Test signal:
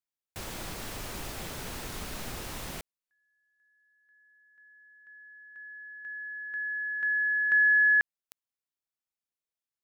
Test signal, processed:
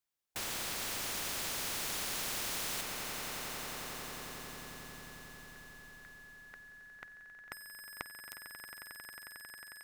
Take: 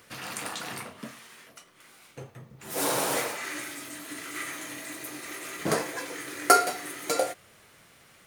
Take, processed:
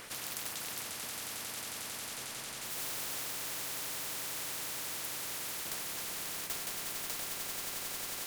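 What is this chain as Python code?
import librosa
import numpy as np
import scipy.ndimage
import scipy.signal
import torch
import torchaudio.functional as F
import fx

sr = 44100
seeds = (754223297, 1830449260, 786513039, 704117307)

y = np.clip(10.0 ** (19.0 / 20.0) * x, -1.0, 1.0) / 10.0 ** (19.0 / 20.0)
y = fx.echo_swell(y, sr, ms=90, loudest=8, wet_db=-14)
y = fx.spectral_comp(y, sr, ratio=10.0)
y = y * librosa.db_to_amplitude(-7.0)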